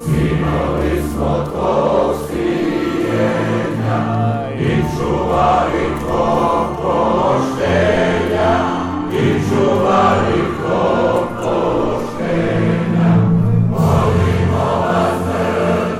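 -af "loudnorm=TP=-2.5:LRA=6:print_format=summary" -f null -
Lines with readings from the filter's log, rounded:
Input Integrated:    -15.6 LUFS
Input True Peak:      -3.2 dBTP
Input LRA:             2.1 LU
Input Threshold:     -25.6 LUFS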